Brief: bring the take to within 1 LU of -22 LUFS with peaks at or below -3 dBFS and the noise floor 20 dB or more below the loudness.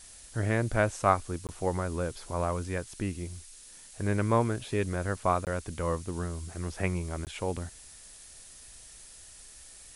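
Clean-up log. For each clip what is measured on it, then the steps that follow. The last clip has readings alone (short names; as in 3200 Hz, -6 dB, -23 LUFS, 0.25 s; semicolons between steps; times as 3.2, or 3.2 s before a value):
dropouts 3; longest dropout 18 ms; noise floor -51 dBFS; noise floor target -52 dBFS; loudness -31.5 LUFS; peak -8.5 dBFS; loudness target -22.0 LUFS
-> interpolate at 1.47/5.45/7.25, 18 ms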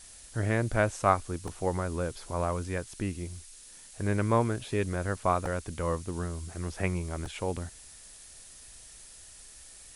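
dropouts 0; noise floor -51 dBFS; noise floor target -52 dBFS
-> noise print and reduce 6 dB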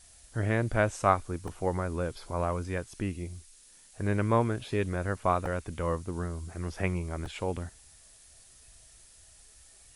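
noise floor -57 dBFS; loudness -31.5 LUFS; peak -8.5 dBFS; loudness target -22.0 LUFS
-> gain +9.5 dB; limiter -3 dBFS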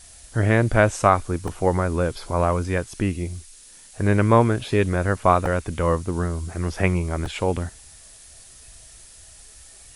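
loudness -22.0 LUFS; peak -3.0 dBFS; noise floor -47 dBFS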